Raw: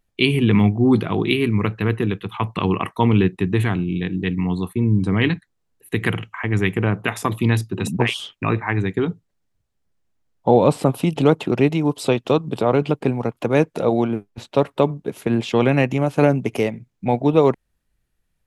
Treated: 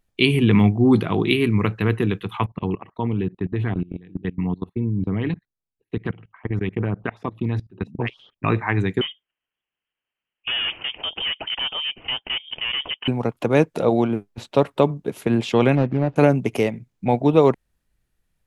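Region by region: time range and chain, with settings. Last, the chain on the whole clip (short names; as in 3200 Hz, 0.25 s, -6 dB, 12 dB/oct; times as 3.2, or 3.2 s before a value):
2.46–8.44 level quantiser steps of 22 dB + LFO notch saw up 8.2 Hz 850–3500 Hz + air absorption 290 m
9.01–13.08 HPF 390 Hz + overloaded stage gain 22.5 dB + inverted band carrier 3400 Hz
15.75–16.16 median filter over 41 samples + LPF 3900 Hz + high shelf 2700 Hz -9 dB
whole clip: dry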